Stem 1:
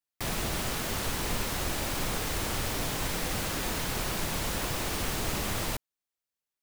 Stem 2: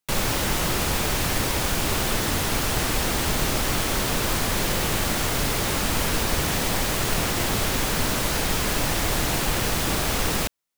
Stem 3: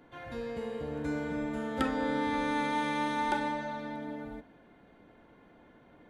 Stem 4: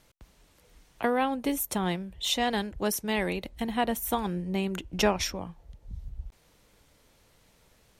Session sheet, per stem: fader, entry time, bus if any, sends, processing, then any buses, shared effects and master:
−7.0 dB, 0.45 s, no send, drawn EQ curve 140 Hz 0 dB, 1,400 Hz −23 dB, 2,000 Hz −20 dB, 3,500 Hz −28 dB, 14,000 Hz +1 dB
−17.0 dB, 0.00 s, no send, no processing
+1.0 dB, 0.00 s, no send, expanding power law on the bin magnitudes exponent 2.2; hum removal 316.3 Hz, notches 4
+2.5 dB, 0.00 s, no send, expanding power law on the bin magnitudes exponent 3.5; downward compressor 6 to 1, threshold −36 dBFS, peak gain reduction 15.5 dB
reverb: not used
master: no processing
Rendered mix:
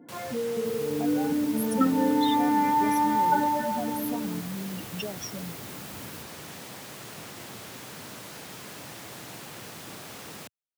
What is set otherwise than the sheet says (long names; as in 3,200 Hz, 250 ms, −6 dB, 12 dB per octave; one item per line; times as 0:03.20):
stem 3 +1.0 dB → +8.0 dB
master: extra high-pass filter 110 Hz 24 dB per octave